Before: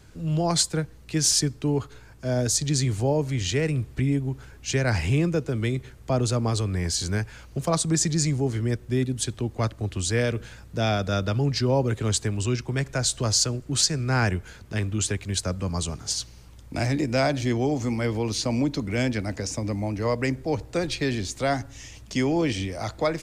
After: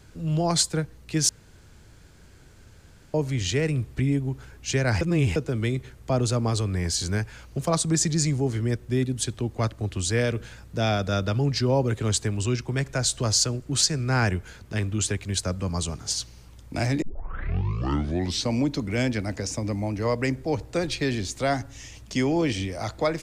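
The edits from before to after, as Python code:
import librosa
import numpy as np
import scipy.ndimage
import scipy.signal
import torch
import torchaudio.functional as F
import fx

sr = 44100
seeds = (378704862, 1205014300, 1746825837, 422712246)

y = fx.edit(x, sr, fx.room_tone_fill(start_s=1.29, length_s=1.85),
    fx.reverse_span(start_s=5.01, length_s=0.35),
    fx.tape_start(start_s=17.02, length_s=1.51), tone=tone)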